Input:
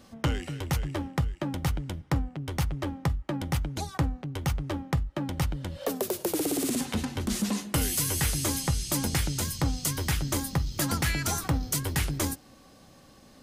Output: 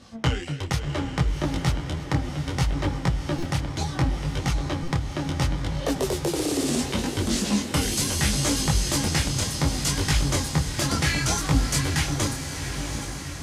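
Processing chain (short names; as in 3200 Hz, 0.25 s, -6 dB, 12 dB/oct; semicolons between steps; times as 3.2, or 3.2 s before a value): LPF 5800 Hz 12 dB/oct; high shelf 4500 Hz +9 dB; diffused feedback echo 0.742 s, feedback 60%, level -7.5 dB; stuck buffer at 3.38/4.83, samples 256, times 7; detuned doubles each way 24 cents; gain +7 dB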